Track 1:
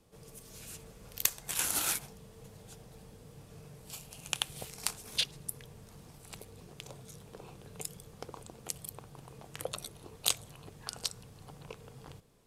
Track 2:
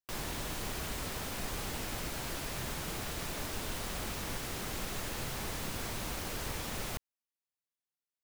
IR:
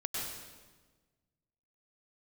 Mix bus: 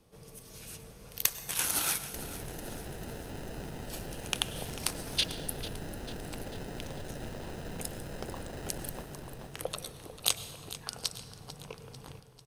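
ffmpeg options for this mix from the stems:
-filter_complex "[0:a]bandreject=f=7300:w=7.2,volume=1.06,asplit=3[s0][s1][s2];[s1]volume=0.178[s3];[s2]volume=0.211[s4];[1:a]alimiter=level_in=3.16:limit=0.0631:level=0:latency=1:release=62,volume=0.316,acrusher=samples=39:mix=1:aa=0.000001,adelay=2050,volume=1.06,asplit=2[s5][s6];[s6]volume=0.531[s7];[2:a]atrim=start_sample=2205[s8];[s3][s8]afir=irnorm=-1:irlink=0[s9];[s4][s7]amix=inputs=2:normalize=0,aecho=0:1:445|890|1335|1780|2225|2670|3115|3560:1|0.54|0.292|0.157|0.085|0.0459|0.0248|0.0134[s10];[s0][s5][s9][s10]amix=inputs=4:normalize=0"

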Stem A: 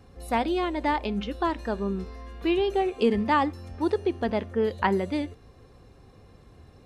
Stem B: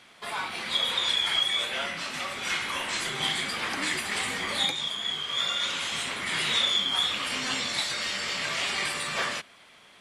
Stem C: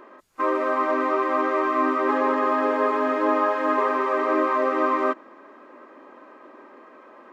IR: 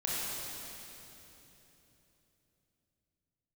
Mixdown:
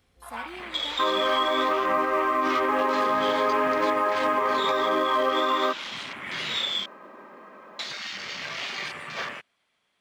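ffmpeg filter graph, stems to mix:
-filter_complex "[0:a]crystalizer=i=3:c=0,volume=0.141[s0];[1:a]afwtdn=0.0224,volume=0.708,asplit=3[s1][s2][s3];[s1]atrim=end=6.86,asetpts=PTS-STARTPTS,afade=t=out:st=6.856:d=0.004:c=hsin[s4];[s2]atrim=start=6.86:end=7.79,asetpts=PTS-STARTPTS,volume=0[s5];[s3]atrim=start=7.79,asetpts=PTS-STARTPTS,afade=t=in:d=0.004:c=hsin[s6];[s4][s5][s6]concat=n=3:v=0:a=1[s7];[2:a]lowshelf=f=220:t=q:w=3:g=7.5,adelay=600,volume=1.26[s8];[s0][s7][s8]amix=inputs=3:normalize=0,acrusher=bits=9:mode=log:mix=0:aa=0.000001,alimiter=limit=0.188:level=0:latency=1:release=105"

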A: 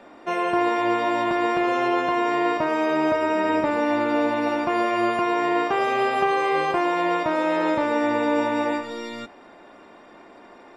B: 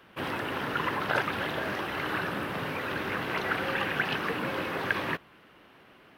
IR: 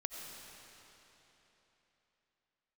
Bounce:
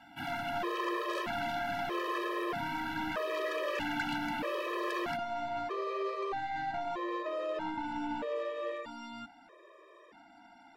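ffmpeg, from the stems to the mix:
-filter_complex "[0:a]acrossover=split=2700[s0][s1];[s1]acompressor=threshold=0.00355:ratio=4:attack=1:release=60[s2];[s0][s2]amix=inputs=2:normalize=0,volume=0.531[s3];[1:a]volume=0.944[s4];[s3][s4]amix=inputs=2:normalize=0,lowshelf=f=280:g=-6.5,asoftclip=type=tanh:threshold=0.0473,afftfilt=real='re*gt(sin(2*PI*0.79*pts/sr)*(1-2*mod(floor(b*sr/1024/330),2)),0)':imag='im*gt(sin(2*PI*0.79*pts/sr)*(1-2*mod(floor(b*sr/1024/330),2)),0)':win_size=1024:overlap=0.75"

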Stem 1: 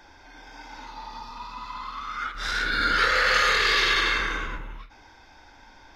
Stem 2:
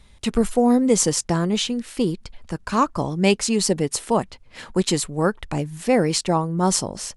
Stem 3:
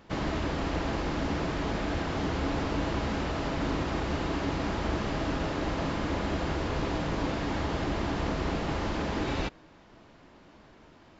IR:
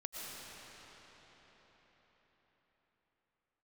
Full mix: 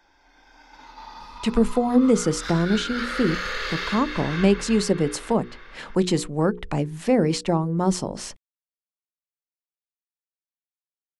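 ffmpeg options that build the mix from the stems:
-filter_complex "[0:a]volume=0.596,asplit=2[s0][s1];[s1]volume=0.631[s2];[1:a]lowpass=f=3600:p=1,adelay=1200,volume=1.26[s3];[s0]agate=range=0.224:threshold=0.00631:ratio=16:detection=peak,acompressor=threshold=0.0316:ratio=6,volume=1[s4];[3:a]atrim=start_sample=2205[s5];[s2][s5]afir=irnorm=-1:irlink=0[s6];[s3][s4][s6]amix=inputs=3:normalize=0,equalizer=f=93:w=2.5:g=-9,bandreject=f=60:t=h:w=6,bandreject=f=120:t=h:w=6,bandreject=f=180:t=h:w=6,bandreject=f=240:t=h:w=6,bandreject=f=300:t=h:w=6,bandreject=f=360:t=h:w=6,bandreject=f=420:t=h:w=6,bandreject=f=480:t=h:w=6,acrossover=split=460[s7][s8];[s8]acompressor=threshold=0.0447:ratio=3[s9];[s7][s9]amix=inputs=2:normalize=0"

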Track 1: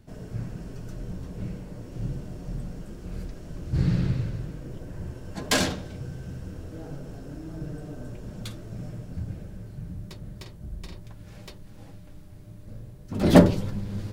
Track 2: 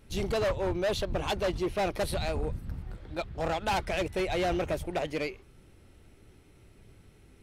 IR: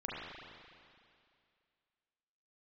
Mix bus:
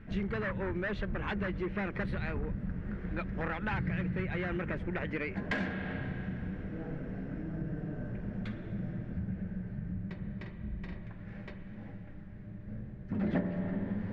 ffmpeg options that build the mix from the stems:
-filter_complex "[0:a]equalizer=f=1200:w=1.5:g=-5,volume=0.562,asplit=2[s0][s1];[s1]volume=0.473[s2];[1:a]equalizer=f=690:t=o:w=0.67:g=-10.5,volume=1.19[s3];[2:a]atrim=start_sample=2205[s4];[s2][s4]afir=irnorm=-1:irlink=0[s5];[s0][s3][s5]amix=inputs=3:normalize=0,lowpass=f=1800:t=q:w=2.9,equalizer=f=200:w=5.2:g=11,acompressor=threshold=0.0251:ratio=4"

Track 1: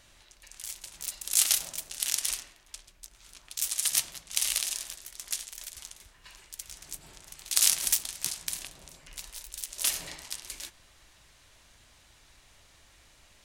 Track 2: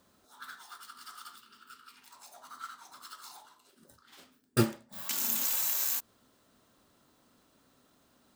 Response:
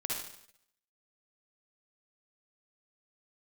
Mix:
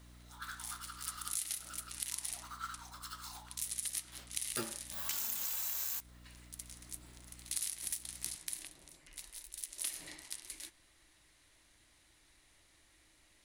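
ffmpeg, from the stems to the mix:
-filter_complex "[0:a]equalizer=f=315:t=o:w=0.33:g=11,equalizer=f=2000:t=o:w=0.33:g=6,equalizer=f=4000:t=o:w=0.33:g=3,equalizer=f=10000:t=o:w=0.33:g=10,volume=0.299[s0];[1:a]highpass=f=570:p=1,aeval=exprs='val(0)+0.00141*(sin(2*PI*60*n/s)+sin(2*PI*2*60*n/s)/2+sin(2*PI*3*60*n/s)/3+sin(2*PI*4*60*n/s)/4+sin(2*PI*5*60*n/s)/5)':c=same,volume=1.12[s1];[s0][s1]amix=inputs=2:normalize=0,acompressor=threshold=0.02:ratio=8"

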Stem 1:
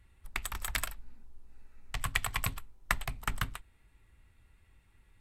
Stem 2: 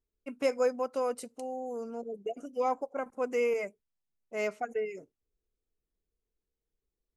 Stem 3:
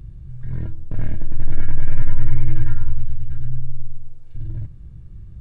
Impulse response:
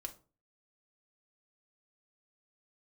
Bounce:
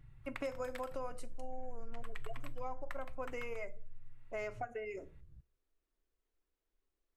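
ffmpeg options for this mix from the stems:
-filter_complex "[0:a]volume=0.631,asplit=2[s0][s1];[s1]volume=0.335[s2];[1:a]volume=1.41,asplit=2[s3][s4];[s4]volume=0.596[s5];[2:a]flanger=delay=6.8:depth=8.4:regen=27:speed=0.46:shape=triangular,volume=0.141,asplit=2[s6][s7];[s7]volume=0.158[s8];[s0][s3]amix=inputs=2:normalize=0,bandpass=f=1200:t=q:w=0.69:csg=0,acompressor=threshold=0.0251:ratio=6,volume=1[s9];[3:a]atrim=start_sample=2205[s10];[s2][s5][s8]amix=inputs=3:normalize=0[s11];[s11][s10]afir=irnorm=-1:irlink=0[s12];[s6][s9][s12]amix=inputs=3:normalize=0,acompressor=threshold=0.01:ratio=3"

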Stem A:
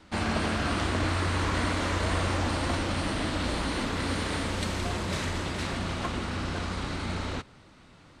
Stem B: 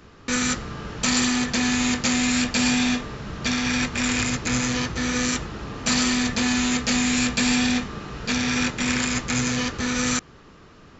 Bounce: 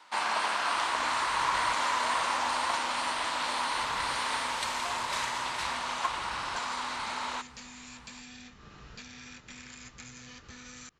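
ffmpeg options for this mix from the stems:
-filter_complex "[0:a]highpass=620,equalizer=f=960:t=o:w=0.46:g=11,volume=1.19[s0];[1:a]acompressor=threshold=0.0282:ratio=10,adelay=700,volume=0.282[s1];[s0][s1]amix=inputs=2:normalize=0,equalizer=f=330:w=0.46:g=-6.5"

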